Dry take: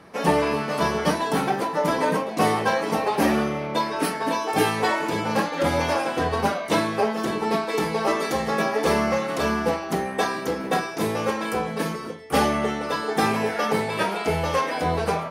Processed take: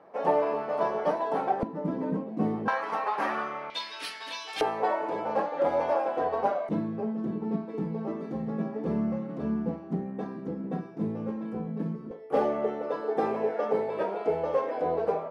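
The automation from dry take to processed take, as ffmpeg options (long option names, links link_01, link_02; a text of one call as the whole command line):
ffmpeg -i in.wav -af "asetnsamples=nb_out_samples=441:pad=0,asendcmd='1.63 bandpass f 220;2.68 bandpass f 1200;3.7 bandpass f 3500;4.61 bandpass f 640;6.69 bandpass f 190;12.11 bandpass f 500',bandpass=frequency=650:width_type=q:width=1.8:csg=0" out.wav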